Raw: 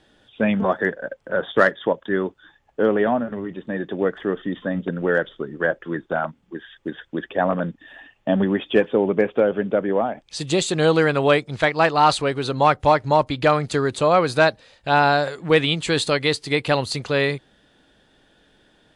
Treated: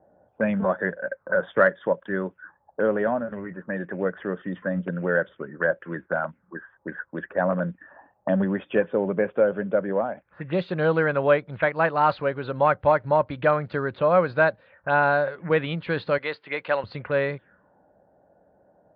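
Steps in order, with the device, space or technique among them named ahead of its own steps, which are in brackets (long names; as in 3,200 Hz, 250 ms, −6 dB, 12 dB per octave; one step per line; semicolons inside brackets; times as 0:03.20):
envelope filter bass rig (envelope-controlled low-pass 700–4,500 Hz up, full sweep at −20 dBFS; loudspeaker in its box 63–2,300 Hz, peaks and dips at 76 Hz +7 dB, 110 Hz +4 dB, 180 Hz +8 dB, 560 Hz +9 dB, 1,000 Hz +4 dB, 1,500 Hz +7 dB)
0:16.18–0:16.84: meter weighting curve A
level −8.5 dB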